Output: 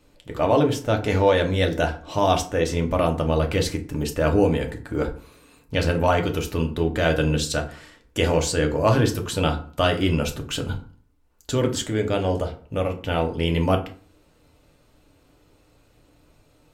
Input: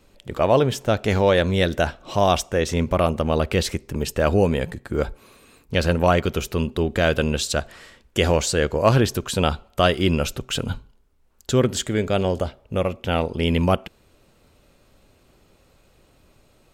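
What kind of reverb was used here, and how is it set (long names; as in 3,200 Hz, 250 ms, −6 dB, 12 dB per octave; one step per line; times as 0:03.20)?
feedback delay network reverb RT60 0.42 s, low-frequency decay 1.25×, high-frequency decay 0.6×, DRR 2.5 dB
level −3.5 dB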